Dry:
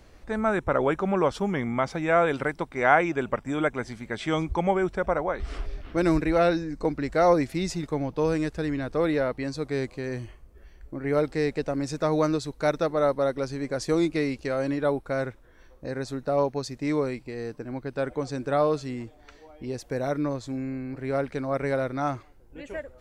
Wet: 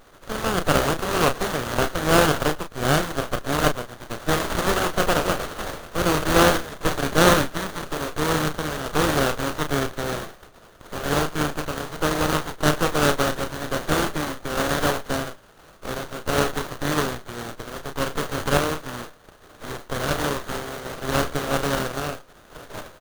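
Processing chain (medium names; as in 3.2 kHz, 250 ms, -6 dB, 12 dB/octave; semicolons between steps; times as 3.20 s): spectral contrast reduction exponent 0.15; peaking EQ 1.2 kHz +6 dB 2.8 oct; static phaser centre 880 Hz, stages 6; delay 111 ms -23 dB; random-step tremolo; doubling 33 ms -7.5 dB; sliding maximum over 17 samples; trim +7 dB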